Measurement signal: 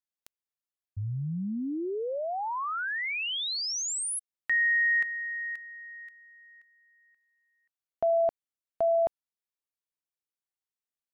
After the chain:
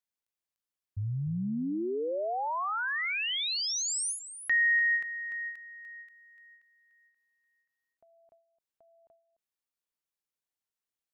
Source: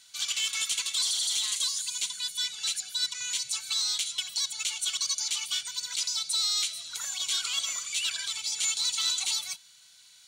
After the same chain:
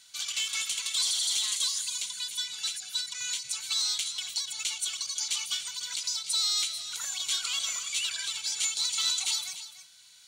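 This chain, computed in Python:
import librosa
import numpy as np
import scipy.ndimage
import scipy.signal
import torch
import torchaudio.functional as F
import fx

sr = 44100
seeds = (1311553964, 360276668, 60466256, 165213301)

y = x + 10.0 ** (-12.5 / 20.0) * np.pad(x, (int(295 * sr / 1000.0), 0))[:len(x)]
y = fx.end_taper(y, sr, db_per_s=120.0)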